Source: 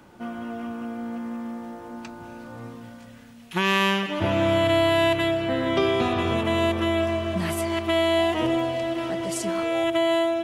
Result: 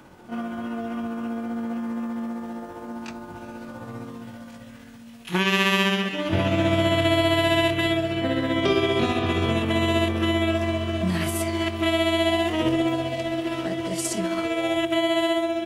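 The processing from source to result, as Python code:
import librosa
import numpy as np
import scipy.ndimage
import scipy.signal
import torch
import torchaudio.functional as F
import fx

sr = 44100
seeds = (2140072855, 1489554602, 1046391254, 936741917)

y = fx.dynamic_eq(x, sr, hz=930.0, q=1.1, threshold_db=-35.0, ratio=4.0, max_db=-5)
y = fx.stretch_grains(y, sr, factor=1.5, grain_ms=132.0)
y = F.gain(torch.from_numpy(y), 3.5).numpy()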